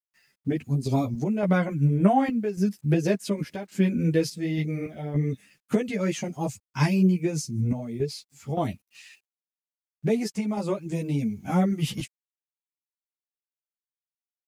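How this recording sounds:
sample-and-hold tremolo, depth 75%
a quantiser's noise floor 12 bits, dither none
a shimmering, thickened sound

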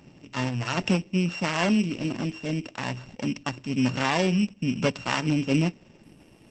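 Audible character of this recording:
a buzz of ramps at a fixed pitch in blocks of 16 samples
Opus

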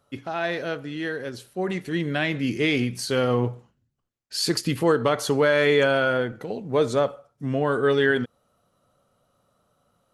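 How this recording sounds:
background noise floor −72 dBFS
spectral slope −4.0 dB per octave

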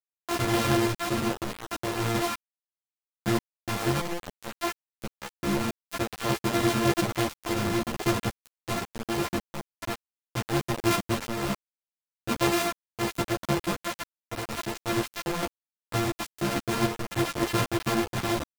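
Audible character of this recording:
a buzz of ramps at a fixed pitch in blocks of 128 samples
sample-and-hold tremolo 3.5 Hz, depth 85%
a quantiser's noise floor 6 bits, dither none
a shimmering, thickened sound

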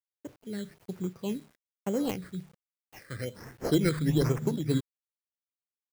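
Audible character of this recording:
aliases and images of a low sample rate 3,600 Hz, jitter 0%
phaser sweep stages 8, 1.2 Hz, lowest notch 790–4,200 Hz
a quantiser's noise floor 10 bits, dither none
amplitude modulation by smooth noise

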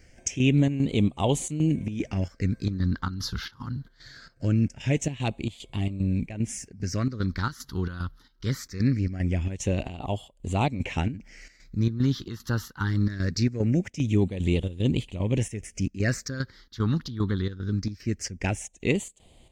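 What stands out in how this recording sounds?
phaser sweep stages 6, 0.22 Hz, lowest notch 630–1,500 Hz
chopped level 2.5 Hz, depth 65%, duty 70%

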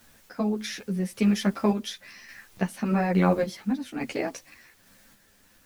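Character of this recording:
a quantiser's noise floor 10 bits, dither triangular
sample-and-hold tremolo
a shimmering, thickened sound

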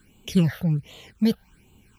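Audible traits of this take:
a quantiser's noise floor 12 bits, dither none
phaser sweep stages 8, 1.3 Hz, lowest notch 300–1,700 Hz

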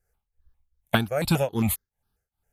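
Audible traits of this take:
tremolo triangle 2.5 Hz, depth 95%
notches that jump at a steady rate 7.4 Hz 990–2,700 Hz

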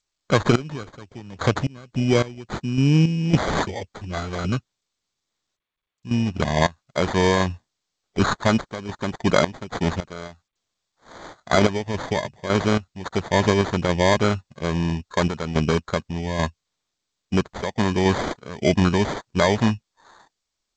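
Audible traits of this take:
aliases and images of a low sample rate 2,700 Hz, jitter 0%
sample-and-hold tremolo 3.6 Hz, depth 95%
G.722

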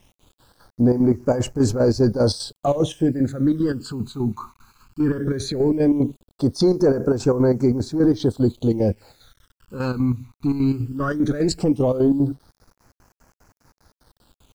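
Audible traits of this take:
chopped level 5 Hz, depth 60%, duty 60%
a quantiser's noise floor 10 bits, dither none
phaser sweep stages 12, 0.17 Hz, lowest notch 550–3,500 Hz

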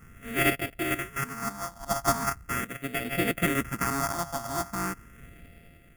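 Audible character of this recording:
a buzz of ramps at a fixed pitch in blocks of 64 samples
tremolo triangle 0.62 Hz, depth 65%
aliases and images of a low sample rate 4,000 Hz, jitter 0%
phaser sweep stages 4, 0.4 Hz, lowest notch 420–1,000 Hz

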